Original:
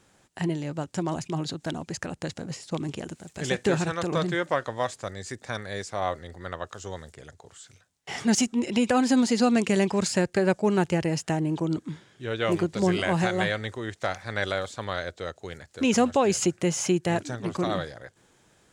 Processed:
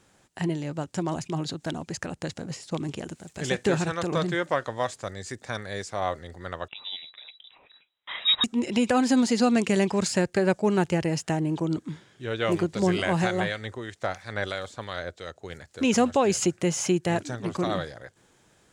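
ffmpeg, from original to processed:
-filter_complex "[0:a]asettb=1/sr,asplit=3[s0][s1][s2];[s0]atrim=end=6.684[s3];[s1]atrim=start=6.68:end=8.44,asetpts=PTS-STARTPTS,afade=t=in:d=0.004:c=qsin,afade=t=out:st=1.756:d=0.004:c=qsin,lowpass=f=3400:t=q:w=0.5098,lowpass=f=3400:t=q:w=0.6013,lowpass=f=3400:t=q:w=0.9,lowpass=f=3400:t=q:w=2.563,afreqshift=-4000[s4];[s2]atrim=start=8.436[s5];[s3][s4]acrossfade=d=0.004:c1=hsin:c2=qsin[s6];[s6][s5]acrossfade=d=0.004:c1=qsin:c2=hsin,asettb=1/sr,asplit=3[s7][s8][s9];[s7]atrim=end=13.404[s10];[s8]atrim=start=13.4:end=15.5,asetpts=PTS-STARTPTS,afade=t=in:d=0.004:c=qsin,afade=t=out:st=2.096:d=0.004:c=qsin,acrossover=split=1700[s11][s12];[s11]aeval=exprs='val(0)*(1-0.5/2+0.5/2*cos(2*PI*3*n/s))':c=same[s13];[s12]aeval=exprs='val(0)*(1-0.5/2-0.5/2*cos(2*PI*3*n/s))':c=same[s14];[s13][s14]amix=inputs=2:normalize=0[s15];[s9]atrim=start=15.496[s16];[s10][s15]acrossfade=d=0.004:c1=hsin:c2=qsin[s17];[s17][s16]acrossfade=d=0.004:c1=qsin:c2=hsin"

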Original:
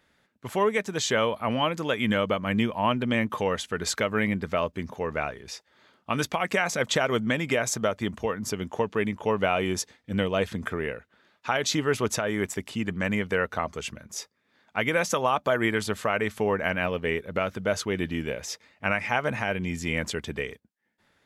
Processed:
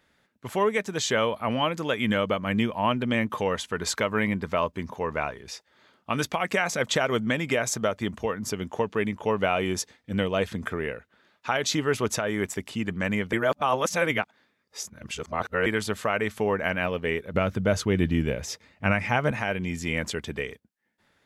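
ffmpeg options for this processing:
-filter_complex "[0:a]asettb=1/sr,asplit=3[s0][s1][s2];[s0]atrim=end=3.544[s3];[s1]atrim=start=3.54:end=5.38,asetpts=PTS-STARTPTS,afade=t=in:d=0.004:c=qsin,afade=t=out:st=1.836:d=0.004:c=qsin,equalizer=f=990:t=o:w=0.26:g=7[s4];[s2]atrim=start=5.376[s5];[s3][s4]acrossfade=d=0.004:c1=hsin:c2=qsin[s6];[s6][s5]acrossfade=d=0.004:c1=qsin:c2=hsin,asettb=1/sr,asplit=3[s7][s8][s9];[s7]atrim=end=17.344[s10];[s8]atrim=start=17.34:end=19.31,asetpts=PTS-STARTPTS,afade=t=in:d=0.004:c=qsin,afade=t=out:st=1.966:d=0.004:c=qsin,lowshelf=f=240:g=11.5[s11];[s9]atrim=start=19.306[s12];[s10][s11]acrossfade=d=0.004:c1=hsin:c2=qsin[s13];[s13][s12]acrossfade=d=0.004:c1=qsin:c2=hsin,asplit=3[s14][s15][s16];[s14]atrim=end=13.332[s17];[s15]atrim=start=13.328:end=15.662,asetpts=PTS-STARTPTS,areverse[s18];[s16]atrim=start=15.658[s19];[s17][s18]acrossfade=d=0.004:c1=hsin:c2=hsin[s20];[s20][s19]acrossfade=d=0.004:c1=hsin:c2=hsin"

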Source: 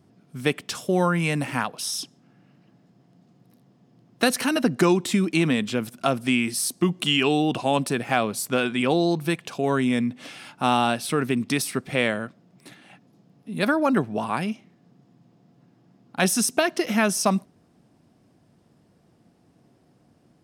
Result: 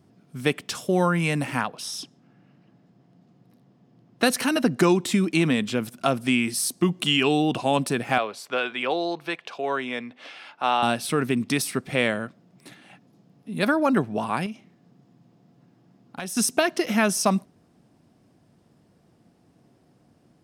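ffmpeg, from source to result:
-filter_complex "[0:a]asettb=1/sr,asplit=3[s0][s1][s2];[s0]atrim=end=1.614[s3];[s1]atrim=start=1.61:end=4.24,asetpts=PTS-STARTPTS,afade=t=in:d=0.004:c=qsin,afade=t=out:st=2.626:d=0.004:c=qsin,highshelf=f=6300:g=-9[s4];[s2]atrim=start=4.236[s5];[s3][s4]acrossfade=d=0.004:c1=hsin:c2=qsin[s6];[s6][s5]acrossfade=d=0.004:c1=qsin:c2=hsin,asettb=1/sr,asplit=3[s7][s8][s9];[s7]atrim=end=8.184[s10];[s8]atrim=start=8.18:end=10.83,asetpts=PTS-STARTPTS,afade=t=in:d=0.004:c=qsin,afade=t=out:st=2.646:d=0.004:c=qsin,acrossover=split=400 4900:gain=0.112 1 0.126[s11][s12][s13];[s11][s12][s13]amix=inputs=3:normalize=0[s14];[s9]atrim=start=10.826[s15];[s10][s14]acrossfade=d=0.004:c1=hsin:c2=qsin[s16];[s16][s15]acrossfade=d=0.004:c1=qsin:c2=hsin,asettb=1/sr,asplit=3[s17][s18][s19];[s17]atrim=end=14.464[s20];[s18]atrim=start=14.46:end=16.37,asetpts=PTS-STARTPTS,afade=t=in:d=0.004:c=qsin,afade=t=out:st=1.906:d=0.004:c=qsin,acompressor=threshold=0.0282:ratio=4:attack=3.2:release=140:knee=1:detection=peak[s21];[s19]atrim=start=16.366[s22];[s20][s21]acrossfade=d=0.004:c1=hsin:c2=qsin[s23];[s23][s22]acrossfade=d=0.004:c1=qsin:c2=hsin"

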